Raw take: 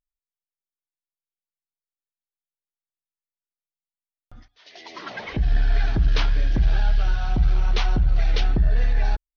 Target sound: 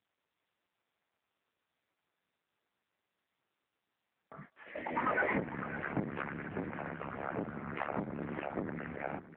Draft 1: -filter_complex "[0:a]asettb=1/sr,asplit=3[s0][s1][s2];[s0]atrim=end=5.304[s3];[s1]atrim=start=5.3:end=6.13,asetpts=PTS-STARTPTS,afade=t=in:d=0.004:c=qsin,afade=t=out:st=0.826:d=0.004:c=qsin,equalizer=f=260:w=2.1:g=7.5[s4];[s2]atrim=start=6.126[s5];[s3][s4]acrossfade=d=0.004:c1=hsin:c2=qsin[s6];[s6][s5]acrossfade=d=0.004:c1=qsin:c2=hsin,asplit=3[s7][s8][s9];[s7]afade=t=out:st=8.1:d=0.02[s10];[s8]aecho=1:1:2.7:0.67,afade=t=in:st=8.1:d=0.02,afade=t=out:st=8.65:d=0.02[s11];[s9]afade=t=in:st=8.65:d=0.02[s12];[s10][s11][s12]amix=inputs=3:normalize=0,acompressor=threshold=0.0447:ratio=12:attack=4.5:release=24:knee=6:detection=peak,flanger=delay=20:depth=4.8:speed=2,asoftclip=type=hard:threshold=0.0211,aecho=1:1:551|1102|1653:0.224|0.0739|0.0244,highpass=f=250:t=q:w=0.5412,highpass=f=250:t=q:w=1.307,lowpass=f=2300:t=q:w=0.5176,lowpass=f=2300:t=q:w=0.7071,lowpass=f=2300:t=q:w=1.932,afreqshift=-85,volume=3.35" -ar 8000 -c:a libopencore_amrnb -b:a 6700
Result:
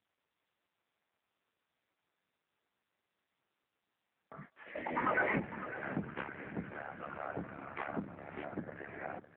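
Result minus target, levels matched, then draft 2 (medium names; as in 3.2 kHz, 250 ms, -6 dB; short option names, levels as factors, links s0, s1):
compression: peak gain reduction +9.5 dB
-filter_complex "[0:a]asettb=1/sr,asplit=3[s0][s1][s2];[s0]atrim=end=5.304[s3];[s1]atrim=start=5.3:end=6.13,asetpts=PTS-STARTPTS,afade=t=in:d=0.004:c=qsin,afade=t=out:st=0.826:d=0.004:c=qsin,equalizer=f=260:w=2.1:g=7.5[s4];[s2]atrim=start=6.126[s5];[s3][s4]acrossfade=d=0.004:c1=hsin:c2=qsin[s6];[s6][s5]acrossfade=d=0.004:c1=qsin:c2=hsin,asplit=3[s7][s8][s9];[s7]afade=t=out:st=8.1:d=0.02[s10];[s8]aecho=1:1:2.7:0.67,afade=t=in:st=8.1:d=0.02,afade=t=out:st=8.65:d=0.02[s11];[s9]afade=t=in:st=8.65:d=0.02[s12];[s10][s11][s12]amix=inputs=3:normalize=0,acompressor=threshold=0.15:ratio=12:attack=4.5:release=24:knee=6:detection=peak,flanger=delay=20:depth=4.8:speed=2,asoftclip=type=hard:threshold=0.0211,aecho=1:1:551|1102|1653:0.224|0.0739|0.0244,highpass=f=250:t=q:w=0.5412,highpass=f=250:t=q:w=1.307,lowpass=f=2300:t=q:w=0.5176,lowpass=f=2300:t=q:w=0.7071,lowpass=f=2300:t=q:w=1.932,afreqshift=-85,volume=3.35" -ar 8000 -c:a libopencore_amrnb -b:a 6700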